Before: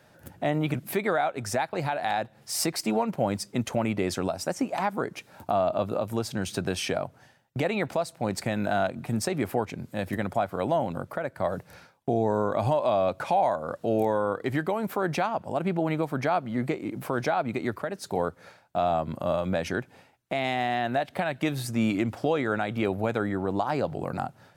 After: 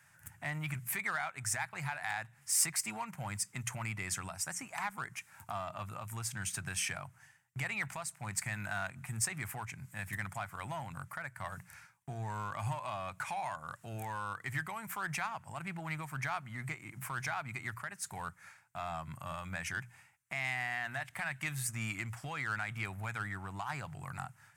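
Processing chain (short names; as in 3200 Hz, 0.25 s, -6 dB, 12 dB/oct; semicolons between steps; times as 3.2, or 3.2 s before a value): ten-band EQ 125 Hz +9 dB, 250 Hz -6 dB, 500 Hz -10 dB, 1000 Hz +6 dB, 2000 Hz +8 dB, 4000 Hz -11 dB, 8000 Hz +9 dB; in parallel at -8 dB: overloaded stage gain 25 dB; on the sum: passive tone stack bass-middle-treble 5-5-5; notches 60/120/180 Hz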